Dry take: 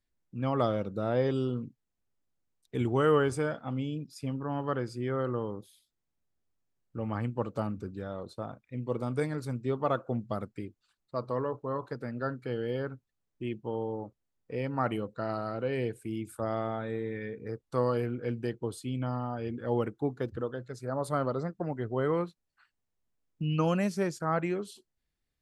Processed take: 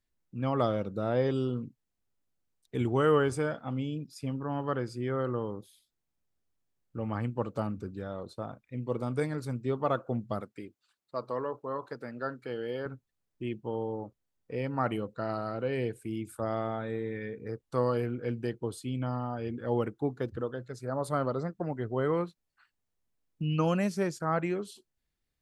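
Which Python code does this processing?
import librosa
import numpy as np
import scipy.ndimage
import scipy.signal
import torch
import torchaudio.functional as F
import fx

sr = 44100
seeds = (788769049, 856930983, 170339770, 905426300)

y = fx.highpass(x, sr, hz=320.0, slope=6, at=(10.4, 12.86))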